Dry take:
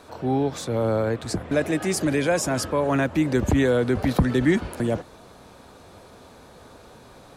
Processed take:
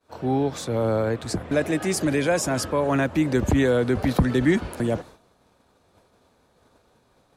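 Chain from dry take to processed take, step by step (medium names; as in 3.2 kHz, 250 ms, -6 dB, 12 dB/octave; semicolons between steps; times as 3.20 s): expander -37 dBFS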